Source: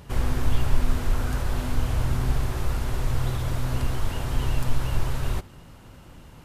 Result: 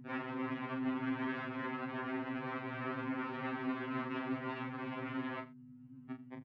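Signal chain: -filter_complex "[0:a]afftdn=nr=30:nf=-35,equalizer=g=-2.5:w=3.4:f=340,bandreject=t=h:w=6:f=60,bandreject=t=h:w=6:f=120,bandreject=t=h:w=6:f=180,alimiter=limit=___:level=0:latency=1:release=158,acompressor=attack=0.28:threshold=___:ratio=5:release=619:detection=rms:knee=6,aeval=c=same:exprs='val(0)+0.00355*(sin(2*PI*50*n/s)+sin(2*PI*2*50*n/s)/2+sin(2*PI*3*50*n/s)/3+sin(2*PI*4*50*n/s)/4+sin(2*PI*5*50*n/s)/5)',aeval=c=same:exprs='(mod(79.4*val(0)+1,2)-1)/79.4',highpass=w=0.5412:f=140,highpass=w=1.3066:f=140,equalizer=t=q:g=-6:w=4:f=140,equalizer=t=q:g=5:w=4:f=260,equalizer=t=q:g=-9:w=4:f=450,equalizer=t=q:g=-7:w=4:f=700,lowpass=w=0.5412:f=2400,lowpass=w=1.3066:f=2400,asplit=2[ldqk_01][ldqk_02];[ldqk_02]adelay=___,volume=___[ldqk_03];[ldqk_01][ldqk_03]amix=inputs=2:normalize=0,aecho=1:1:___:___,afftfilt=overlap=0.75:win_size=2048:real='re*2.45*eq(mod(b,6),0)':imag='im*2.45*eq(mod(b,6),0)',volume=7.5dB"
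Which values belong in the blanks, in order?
-12.5dB, -33dB, 34, -6.5dB, 84, 0.112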